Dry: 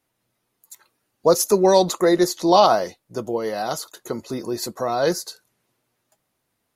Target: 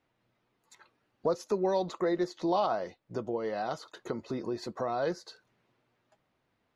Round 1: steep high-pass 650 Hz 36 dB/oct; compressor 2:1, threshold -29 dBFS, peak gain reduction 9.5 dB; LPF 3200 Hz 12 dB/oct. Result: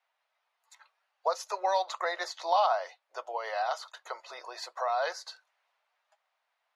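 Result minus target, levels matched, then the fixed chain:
compressor: peak gain reduction -5 dB; 500 Hz band -3.5 dB
compressor 2:1, threshold -36.5 dBFS, peak gain reduction 14.5 dB; LPF 3200 Hz 12 dB/oct

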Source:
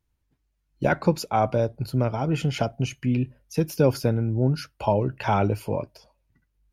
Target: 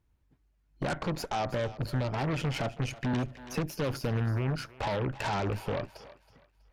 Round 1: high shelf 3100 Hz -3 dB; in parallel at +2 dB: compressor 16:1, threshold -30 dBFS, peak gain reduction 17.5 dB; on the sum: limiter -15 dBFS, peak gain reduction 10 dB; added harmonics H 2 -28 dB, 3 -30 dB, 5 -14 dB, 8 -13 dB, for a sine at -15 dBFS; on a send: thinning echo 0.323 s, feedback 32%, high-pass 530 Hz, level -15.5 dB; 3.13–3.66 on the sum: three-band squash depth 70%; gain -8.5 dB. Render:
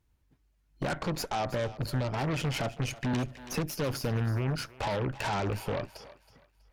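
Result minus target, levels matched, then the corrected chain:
8000 Hz band +4.5 dB
high shelf 3100 Hz -9.5 dB; in parallel at +2 dB: compressor 16:1, threshold -30 dBFS, peak gain reduction 17 dB; on the sum: limiter -15 dBFS, peak gain reduction 10 dB; added harmonics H 2 -28 dB, 3 -30 dB, 5 -14 dB, 8 -13 dB, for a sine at -15 dBFS; on a send: thinning echo 0.323 s, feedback 32%, high-pass 530 Hz, level -15.5 dB; 3.13–3.66 on the sum: three-band squash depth 70%; gain -8.5 dB

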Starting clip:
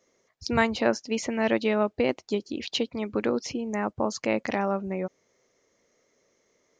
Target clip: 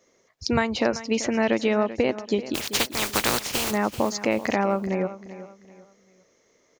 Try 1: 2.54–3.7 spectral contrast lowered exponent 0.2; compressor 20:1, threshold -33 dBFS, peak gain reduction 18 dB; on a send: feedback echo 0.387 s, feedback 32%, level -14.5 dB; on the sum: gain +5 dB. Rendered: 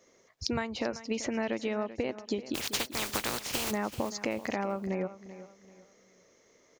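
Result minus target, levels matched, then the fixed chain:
compressor: peak gain reduction +10.5 dB
2.54–3.7 spectral contrast lowered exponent 0.2; compressor 20:1, threshold -22 dBFS, peak gain reduction 7.5 dB; on a send: feedback echo 0.387 s, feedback 32%, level -14.5 dB; on the sum: gain +5 dB

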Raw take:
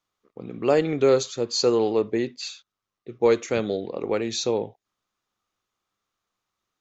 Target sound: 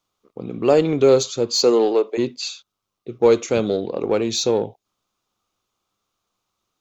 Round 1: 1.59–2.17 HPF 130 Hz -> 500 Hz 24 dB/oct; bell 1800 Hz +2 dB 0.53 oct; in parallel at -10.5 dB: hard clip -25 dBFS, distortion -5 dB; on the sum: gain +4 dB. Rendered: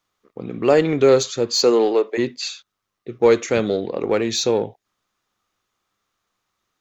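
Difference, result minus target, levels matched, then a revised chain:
2000 Hz band +5.0 dB
1.59–2.17 HPF 130 Hz -> 500 Hz 24 dB/oct; bell 1800 Hz -9.5 dB 0.53 oct; in parallel at -10.5 dB: hard clip -25 dBFS, distortion -5 dB; on the sum: gain +4 dB

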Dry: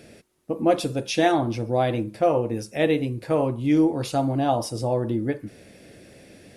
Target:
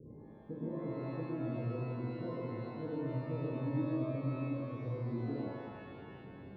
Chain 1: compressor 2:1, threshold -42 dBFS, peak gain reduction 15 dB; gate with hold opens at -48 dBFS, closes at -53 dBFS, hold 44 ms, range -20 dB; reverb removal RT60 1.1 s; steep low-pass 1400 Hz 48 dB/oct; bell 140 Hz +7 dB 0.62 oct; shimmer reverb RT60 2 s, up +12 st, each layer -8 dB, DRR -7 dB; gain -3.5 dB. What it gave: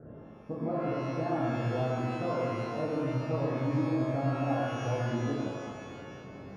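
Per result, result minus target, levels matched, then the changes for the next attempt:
1000 Hz band +6.5 dB; compressor: peak gain reduction -5.5 dB
change: steep low-pass 490 Hz 48 dB/oct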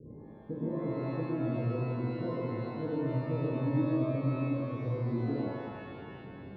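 compressor: peak gain reduction -5.5 dB
change: compressor 2:1, threshold -53 dBFS, peak gain reduction 20.5 dB

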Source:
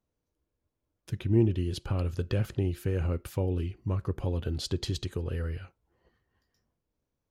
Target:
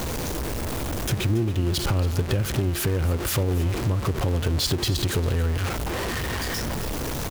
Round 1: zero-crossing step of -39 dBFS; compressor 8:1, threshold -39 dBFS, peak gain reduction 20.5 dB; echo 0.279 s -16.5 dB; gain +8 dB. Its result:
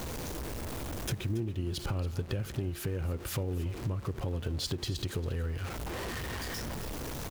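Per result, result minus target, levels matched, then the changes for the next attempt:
compressor: peak gain reduction +9 dB; zero-crossing step: distortion -8 dB
change: compressor 8:1, threshold -28 dBFS, peak gain reduction 11 dB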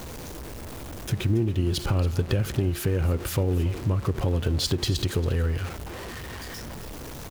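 zero-crossing step: distortion -8 dB
change: zero-crossing step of -29.5 dBFS

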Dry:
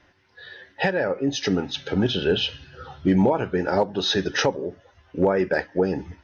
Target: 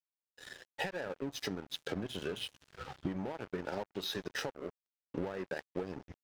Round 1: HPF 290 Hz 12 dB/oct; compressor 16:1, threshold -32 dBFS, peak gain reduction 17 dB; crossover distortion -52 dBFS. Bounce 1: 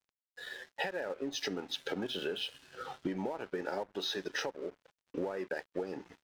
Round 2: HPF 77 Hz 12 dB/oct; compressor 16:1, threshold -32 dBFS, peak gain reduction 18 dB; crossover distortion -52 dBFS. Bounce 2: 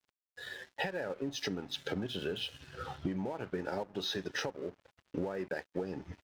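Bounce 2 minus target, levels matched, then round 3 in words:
crossover distortion: distortion -8 dB
HPF 77 Hz 12 dB/oct; compressor 16:1, threshold -32 dBFS, peak gain reduction 18 dB; crossover distortion -42.5 dBFS

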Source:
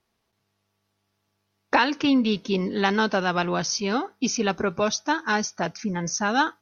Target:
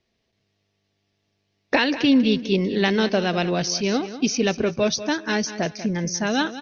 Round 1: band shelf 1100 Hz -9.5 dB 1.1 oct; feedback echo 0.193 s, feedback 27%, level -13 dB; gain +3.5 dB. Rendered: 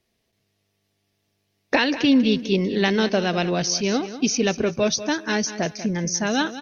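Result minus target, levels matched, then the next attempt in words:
8000 Hz band +3.0 dB
LPF 6000 Hz 24 dB/oct; band shelf 1100 Hz -9.5 dB 1.1 oct; feedback echo 0.193 s, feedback 27%, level -13 dB; gain +3.5 dB

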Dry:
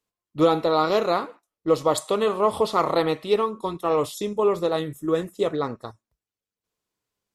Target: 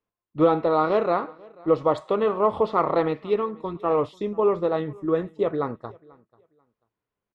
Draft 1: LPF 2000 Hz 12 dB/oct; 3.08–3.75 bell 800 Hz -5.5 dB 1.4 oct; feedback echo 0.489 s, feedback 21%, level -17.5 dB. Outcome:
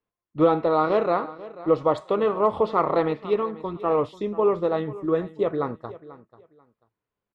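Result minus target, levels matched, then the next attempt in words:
echo-to-direct +7.5 dB
LPF 2000 Hz 12 dB/oct; 3.08–3.75 bell 800 Hz -5.5 dB 1.4 oct; feedback echo 0.489 s, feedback 21%, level -25 dB

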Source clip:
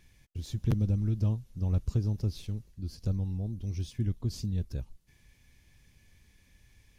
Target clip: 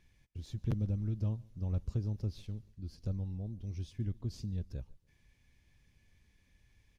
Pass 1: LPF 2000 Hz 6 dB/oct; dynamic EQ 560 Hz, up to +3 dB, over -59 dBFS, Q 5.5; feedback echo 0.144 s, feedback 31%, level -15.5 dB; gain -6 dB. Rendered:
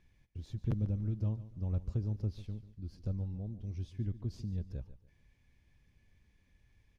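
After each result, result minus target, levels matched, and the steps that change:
echo-to-direct +10 dB; 4000 Hz band -5.0 dB
change: feedback echo 0.144 s, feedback 31%, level -25.5 dB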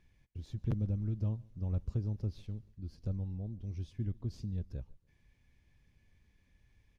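4000 Hz band -5.0 dB
change: LPF 4900 Hz 6 dB/oct

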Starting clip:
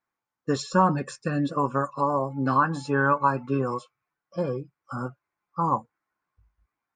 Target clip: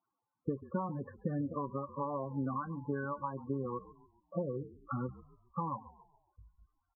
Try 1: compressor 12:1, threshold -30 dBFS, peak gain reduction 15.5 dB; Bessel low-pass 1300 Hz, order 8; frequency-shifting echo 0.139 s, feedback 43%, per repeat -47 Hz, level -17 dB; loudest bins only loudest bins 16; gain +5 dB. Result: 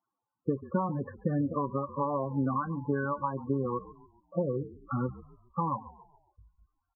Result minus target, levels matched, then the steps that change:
compressor: peak gain reduction -6.5 dB
change: compressor 12:1, threshold -37 dBFS, peak gain reduction 22 dB

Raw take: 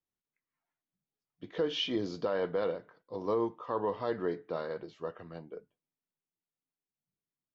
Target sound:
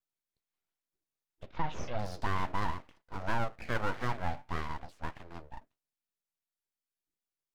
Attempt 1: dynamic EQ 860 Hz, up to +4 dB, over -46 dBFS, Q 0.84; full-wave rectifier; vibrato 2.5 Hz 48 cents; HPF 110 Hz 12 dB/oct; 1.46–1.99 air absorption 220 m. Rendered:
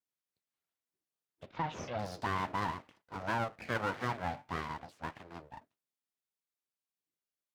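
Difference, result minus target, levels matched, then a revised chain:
125 Hz band -2.5 dB
dynamic EQ 860 Hz, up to +4 dB, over -46 dBFS, Q 0.84; full-wave rectifier; vibrato 2.5 Hz 48 cents; 1.46–1.99 air absorption 220 m

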